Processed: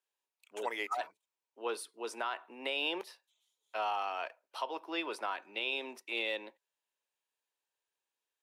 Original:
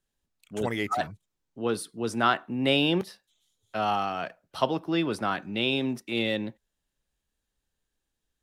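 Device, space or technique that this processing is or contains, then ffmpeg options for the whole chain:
laptop speaker: -af "highpass=f=400:w=0.5412,highpass=f=400:w=1.3066,equalizer=f=960:t=o:w=0.28:g=9,equalizer=f=2.5k:t=o:w=0.41:g=6,alimiter=limit=-16.5dB:level=0:latency=1:release=155,volume=-7dB"

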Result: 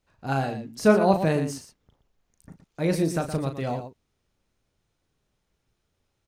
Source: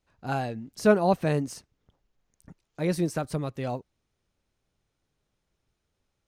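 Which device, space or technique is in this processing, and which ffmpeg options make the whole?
slapback doubling: -filter_complex "[0:a]asplit=3[a][b][c];[b]adelay=37,volume=-8dB[d];[c]adelay=118,volume=-10dB[e];[a][d][e]amix=inputs=3:normalize=0,volume=2dB"

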